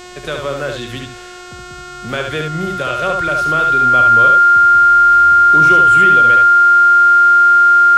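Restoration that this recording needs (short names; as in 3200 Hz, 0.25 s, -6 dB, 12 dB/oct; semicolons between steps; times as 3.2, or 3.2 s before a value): de-hum 360.5 Hz, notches 23; notch 1400 Hz, Q 30; expander -24 dBFS, range -21 dB; inverse comb 71 ms -4.5 dB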